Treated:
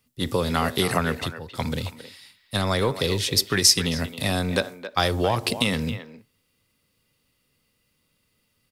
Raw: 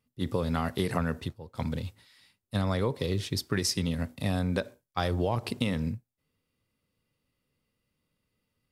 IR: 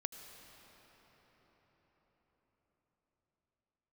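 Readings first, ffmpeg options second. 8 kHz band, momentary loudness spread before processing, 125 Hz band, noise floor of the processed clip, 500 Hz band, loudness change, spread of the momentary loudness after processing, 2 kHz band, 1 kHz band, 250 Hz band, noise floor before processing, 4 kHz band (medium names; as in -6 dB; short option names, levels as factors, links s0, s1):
+14.0 dB, 8 LU, +3.0 dB, -71 dBFS, +6.5 dB, +7.5 dB, 14 LU, +10.5 dB, +8.0 dB, +3.5 dB, -82 dBFS, +13.0 dB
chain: -filter_complex "[0:a]highshelf=f=2000:g=8.5,acrossover=split=270|5100[s0][s1][s2];[s0]asoftclip=type=tanh:threshold=0.0299[s3];[s3][s1][s2]amix=inputs=3:normalize=0,asplit=2[s4][s5];[s5]adelay=270,highpass=300,lowpass=3400,asoftclip=type=hard:threshold=0.126,volume=0.282[s6];[s4][s6]amix=inputs=2:normalize=0,volume=2"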